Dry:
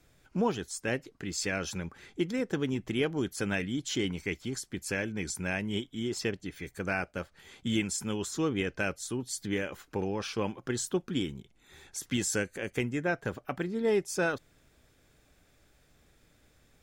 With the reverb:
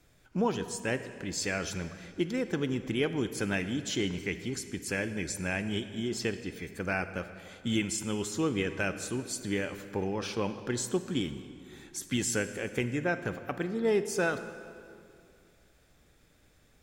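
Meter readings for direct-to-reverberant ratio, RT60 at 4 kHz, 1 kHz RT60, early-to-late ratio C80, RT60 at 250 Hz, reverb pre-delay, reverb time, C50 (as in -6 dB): 10.5 dB, 1.7 s, 2.3 s, 12.0 dB, 2.5 s, 35 ms, 2.4 s, 11.0 dB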